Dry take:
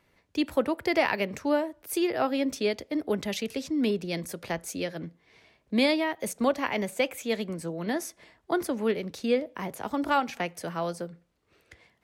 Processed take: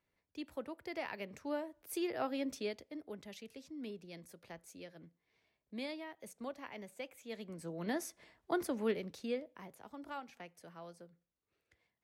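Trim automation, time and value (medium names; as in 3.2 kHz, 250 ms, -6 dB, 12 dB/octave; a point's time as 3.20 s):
0.95 s -17.5 dB
1.92 s -10.5 dB
2.55 s -10.5 dB
3.10 s -19 dB
7.19 s -19 dB
7.82 s -7.5 dB
8.93 s -7.5 dB
9.86 s -20 dB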